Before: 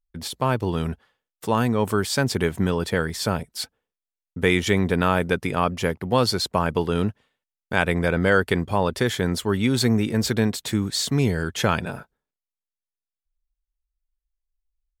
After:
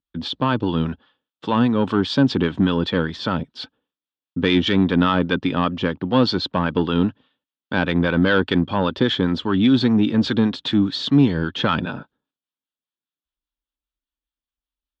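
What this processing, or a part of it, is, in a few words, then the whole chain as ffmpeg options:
guitar amplifier with harmonic tremolo: -filter_complex "[0:a]acrossover=split=750[s0][s1];[s0]aeval=exprs='val(0)*(1-0.5/2+0.5/2*cos(2*PI*5*n/s))':c=same[s2];[s1]aeval=exprs='val(0)*(1-0.5/2-0.5/2*cos(2*PI*5*n/s))':c=same[s3];[s2][s3]amix=inputs=2:normalize=0,asoftclip=type=tanh:threshold=0.188,highpass=100,equalizer=f=110:t=q:w=4:g=-4,equalizer=f=280:t=q:w=4:g=9,equalizer=f=420:t=q:w=4:g=-5,equalizer=f=690:t=q:w=4:g=-6,equalizer=f=2100:t=q:w=4:g=-10,equalizer=f=3400:t=q:w=4:g=6,lowpass=f=3900:w=0.5412,lowpass=f=3900:w=1.3066,volume=2.24"

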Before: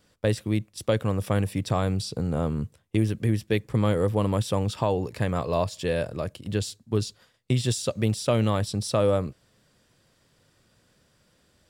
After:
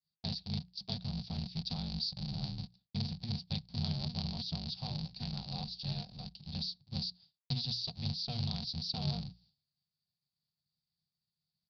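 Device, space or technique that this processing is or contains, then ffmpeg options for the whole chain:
ring modulator pedal into a guitar cabinet: -filter_complex "[0:a]aeval=exprs='val(0)*sgn(sin(2*PI*120*n/s))':c=same,highpass=99,equalizer=f=150:t=q:w=4:g=9,equalizer=f=220:t=q:w=4:g=-9,equalizer=f=760:t=q:w=4:g=10,equalizer=f=1200:t=q:w=4:g=-4,equalizer=f=2000:t=q:w=4:g=-3,equalizer=f=3100:t=q:w=4:g=-4,lowpass=f=4400:w=0.5412,lowpass=f=4400:w=1.3066,bandreject=f=60:t=h:w=6,bandreject=f=120:t=h:w=6,bandreject=f=180:t=h:w=6,agate=range=0.0224:threshold=0.00251:ratio=3:detection=peak,asettb=1/sr,asplit=3[s0][s1][s2];[s0]atrim=end=0.944[s3];[s1]atrim=start=0.94:end=1.52,asetpts=PTS-STARTPTS,afade=t=in:d=0.004:c=qsin,afade=t=out:st=0.576:d=0.004:c=qsin,deesser=0.9[s4];[s2]atrim=start=1.516[s5];[s3][s4]acrossfade=d=0.004:c1=hsin:c2=qsin[s6];[s6][s5]acrossfade=d=0.004:c1=qsin:c2=hsin,firequalizer=gain_entry='entry(200,0);entry(300,-28);entry(950,-23);entry(1600,-25);entry(4600,13);entry(7800,-28)':delay=0.05:min_phase=1,volume=0.631"

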